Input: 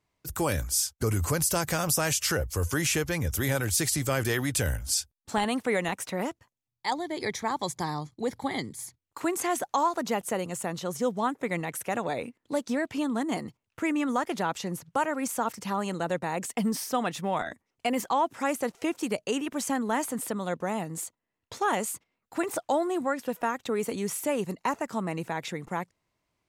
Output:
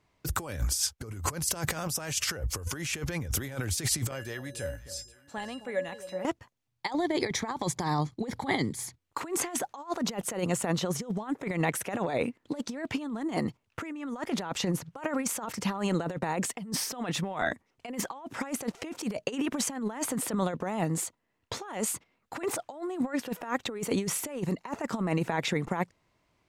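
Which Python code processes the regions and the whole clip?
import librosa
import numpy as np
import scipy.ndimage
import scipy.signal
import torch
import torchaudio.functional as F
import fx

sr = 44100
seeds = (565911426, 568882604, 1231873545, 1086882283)

y = fx.chain(x, sr, fx.comb_fb(f0_hz=570.0, decay_s=0.27, harmonics='odd', damping=0.0, mix_pct=90),
    fx.echo_alternate(ms=264, hz=900.0, feedback_pct=54, wet_db=-13), at=(4.11, 6.25))
y = fx.high_shelf(y, sr, hz=7600.0, db=-10.0)
y = fx.over_compress(y, sr, threshold_db=-33.0, ratio=-0.5)
y = y * librosa.db_to_amplitude(3.0)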